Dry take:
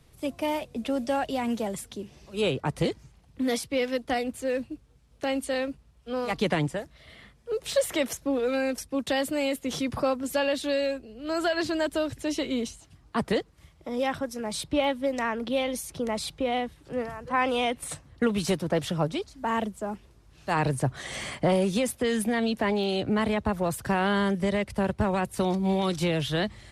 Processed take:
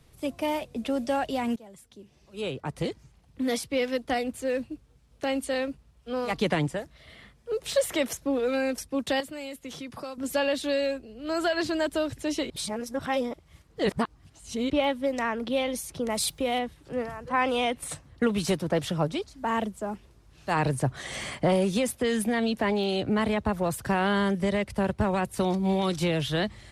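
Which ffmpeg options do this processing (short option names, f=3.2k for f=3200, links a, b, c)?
-filter_complex "[0:a]asettb=1/sr,asplit=3[a][b][c];[a]atrim=end=9.204[d];[b]atrim=start=9.2:end=10.18,asetpts=PTS-STARTPTS,afade=t=in:d=0.004:c=qsin,afade=t=out:st=0.976:d=0.004:c=qsin,acrossover=split=160|920|3900[e][f][g][h];[e]acompressor=threshold=-56dB:ratio=3[i];[f]acompressor=threshold=-42dB:ratio=3[j];[g]acompressor=threshold=-47dB:ratio=3[k];[h]acompressor=threshold=-50dB:ratio=3[l];[i][j][k][l]amix=inputs=4:normalize=0[m];[c]atrim=start=10.176[n];[d][m]acrossfade=d=0.004:c1=hsin:c2=qsin[o];[o][n]acrossfade=d=0.004:c1=qsin:c2=hsin,asettb=1/sr,asplit=3[p][q][r];[p]atrim=end=16.104[s];[q]atrim=start=16.1:end=16.59,asetpts=PTS-STARTPTS,afade=t=in:d=0.004:c=qsin,afade=t=out:st=0.486:d=0.004:c=qsin,aemphasis=mode=production:type=50fm[t];[r]atrim=start=16.586[u];[s][t]acrossfade=d=0.004:c1=hsin:c2=qsin[v];[v][u]acrossfade=d=0.004:c1=qsin:c2=hsin,asplit=4[w][x][y][z];[w]atrim=end=1.56,asetpts=PTS-STARTPTS,afade=t=out:st=1.556:d=0.004:c=hsin:silence=0.0891251[aa];[x]atrim=start=1.56:end=12.502,asetpts=PTS-STARTPTS,afade=t=in:d=2.12:silence=0.0891251[ab];[y]atrim=start=12.498:end=14.702,asetpts=PTS-STARTPTS,areverse[ac];[z]atrim=start=14.698[ad];[aa][ab]concat=n=2:v=0:a=1[ae];[ae][ac]acrossfade=d=0.004:c1=hsin:c2=hsin[af];[af][ad]acrossfade=d=0.004:c1=hsin:c2=hsin"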